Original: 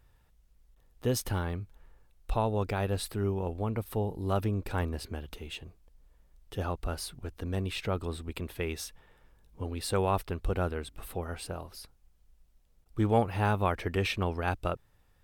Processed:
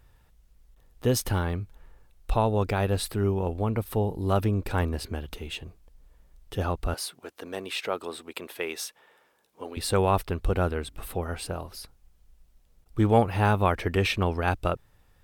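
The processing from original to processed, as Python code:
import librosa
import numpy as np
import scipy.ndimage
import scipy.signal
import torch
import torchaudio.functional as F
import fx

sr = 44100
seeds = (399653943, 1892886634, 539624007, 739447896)

y = fx.highpass(x, sr, hz=410.0, slope=12, at=(6.94, 9.77))
y = F.gain(torch.from_numpy(y), 5.0).numpy()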